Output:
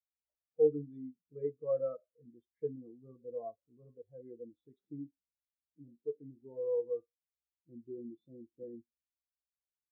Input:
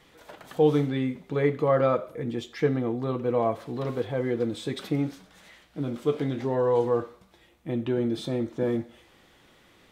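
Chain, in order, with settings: hum 60 Hz, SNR 27 dB; spectral contrast expander 2.5:1; trim -7.5 dB

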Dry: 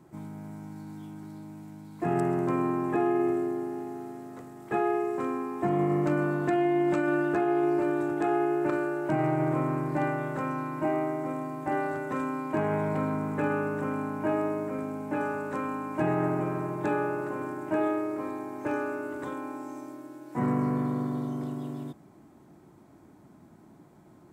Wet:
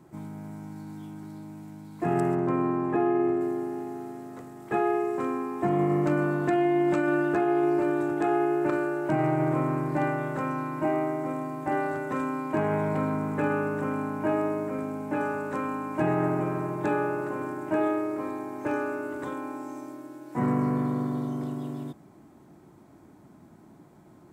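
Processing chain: 2.35–3.41 s: low-pass 2.3 kHz 6 dB/octave; trim +1.5 dB

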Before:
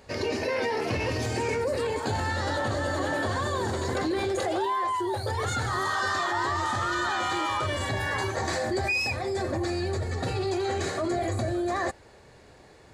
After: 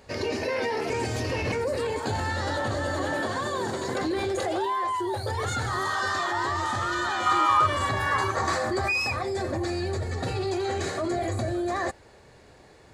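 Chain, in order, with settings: 0.90–1.52 s: reverse; 3.20–4.01 s: high-pass 120 Hz 24 dB/octave; 7.26–9.23 s: peaking EQ 1.2 kHz +12.5 dB 0.45 oct

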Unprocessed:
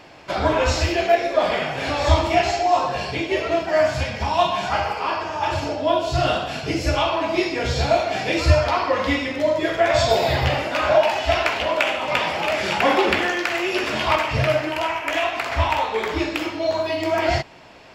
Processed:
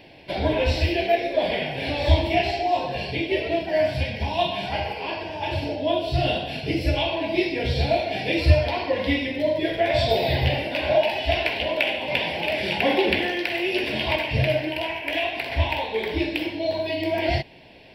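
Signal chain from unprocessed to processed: static phaser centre 3 kHz, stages 4

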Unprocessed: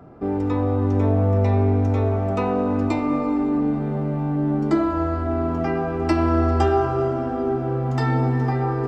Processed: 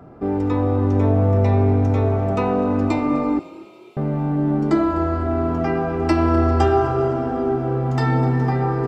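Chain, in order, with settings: 3.39–3.97 s: steep high-pass 2.3 kHz 96 dB/octave; frequency-shifting echo 251 ms, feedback 48%, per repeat +34 Hz, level -19.5 dB; trim +2 dB

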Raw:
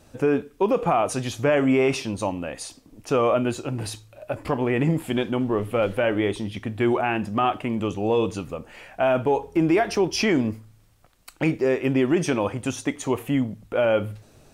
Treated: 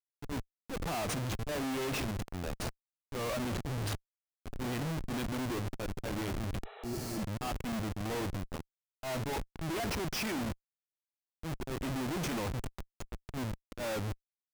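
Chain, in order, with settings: slow attack 195 ms; peaking EQ 440 Hz -8.5 dB 0.95 oct; Schmitt trigger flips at -31 dBFS; transient shaper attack -7 dB, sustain -11 dB; spectral replace 6.68–7.19 s, 390–4100 Hz both; trim -5 dB

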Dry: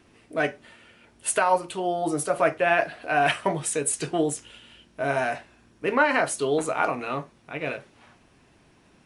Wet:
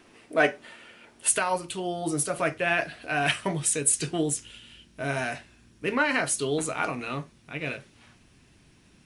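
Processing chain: peaking EQ 67 Hz -11 dB 2.6 oct, from 1.28 s 740 Hz; trim +4 dB

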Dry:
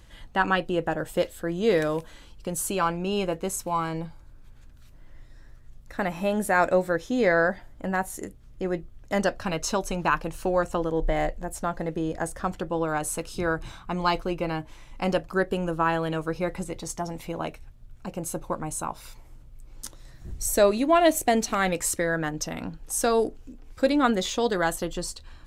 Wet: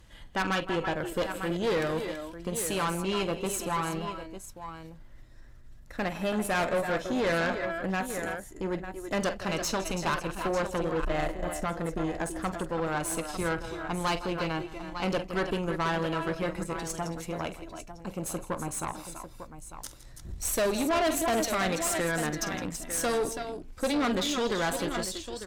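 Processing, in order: dynamic bell 3.4 kHz, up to +4 dB, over -42 dBFS, Q 1; multi-tap echo 47/162/330/333/899 ms -13.5/-17/-12/-14/-12 dB; valve stage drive 23 dB, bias 0.6

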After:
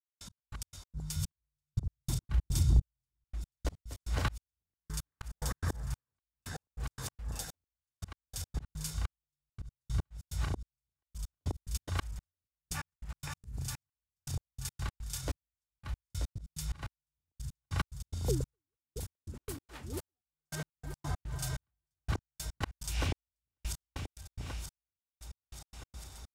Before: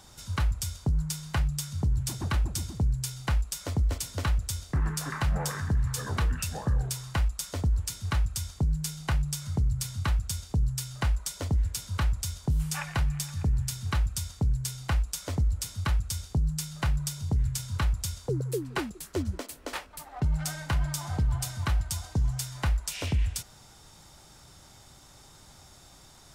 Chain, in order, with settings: backward echo that repeats 466 ms, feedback 71%, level -6 dB; de-hum 49.45 Hz, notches 5; 1.16–3.32 s: bass shelf 190 Hz +11 dB; slow attack 421 ms; trance gate "..x..x.x.xxx..." 144 bpm -60 dB; trim -2.5 dB

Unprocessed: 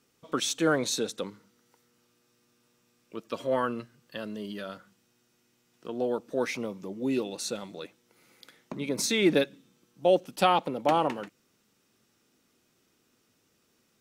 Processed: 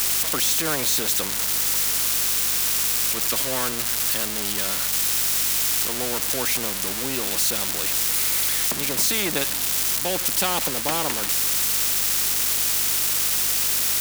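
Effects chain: zero-crossing glitches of -21 dBFS; hum 50 Hz, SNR 26 dB; spectrum-flattening compressor 2:1

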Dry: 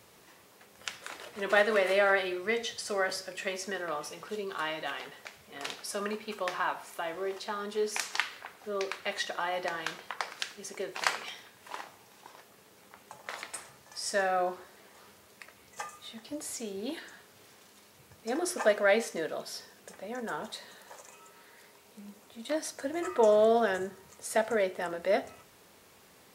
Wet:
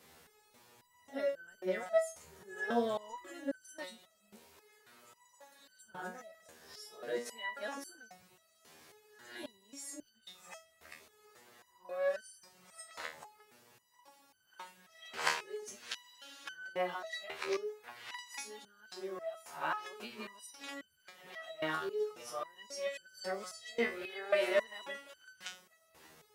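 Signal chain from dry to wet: reverse the whole clip; spectral freeze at 15.95 s, 0.50 s; resonator arpeggio 3.7 Hz 79–1500 Hz; trim +6 dB

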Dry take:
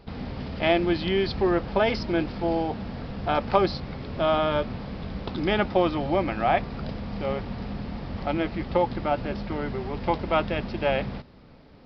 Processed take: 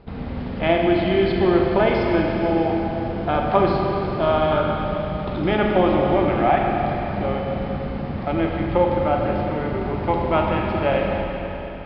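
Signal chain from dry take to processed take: distance through air 280 m; Schroeder reverb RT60 3.8 s, combs from 33 ms, DRR -0.5 dB; trim +3.5 dB

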